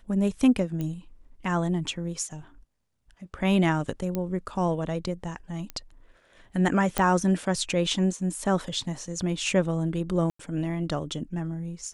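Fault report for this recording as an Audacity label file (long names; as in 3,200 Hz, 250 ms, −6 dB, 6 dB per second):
0.810000	0.810000	click −20 dBFS
4.150000	4.150000	click −16 dBFS
5.700000	5.700000	click −19 dBFS
6.980000	6.980000	click −10 dBFS
10.300000	10.390000	drop-out 94 ms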